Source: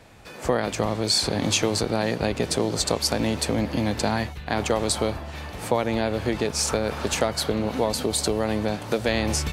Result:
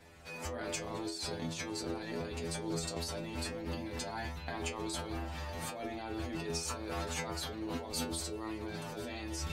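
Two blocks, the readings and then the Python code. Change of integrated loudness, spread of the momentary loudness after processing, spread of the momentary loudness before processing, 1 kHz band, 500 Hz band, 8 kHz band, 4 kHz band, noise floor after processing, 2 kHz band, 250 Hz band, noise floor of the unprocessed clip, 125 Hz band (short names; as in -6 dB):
-14.5 dB, 4 LU, 5 LU, -13.5 dB, -16.0 dB, -14.0 dB, -15.0 dB, -44 dBFS, -12.5 dB, -14.0 dB, -39 dBFS, -13.0 dB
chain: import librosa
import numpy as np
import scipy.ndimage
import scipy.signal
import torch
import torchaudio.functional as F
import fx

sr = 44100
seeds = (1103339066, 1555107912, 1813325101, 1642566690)

y = fx.over_compress(x, sr, threshold_db=-29.0, ratio=-1.0)
y = fx.stiff_resonator(y, sr, f0_hz=81.0, decay_s=0.43, stiffness=0.002)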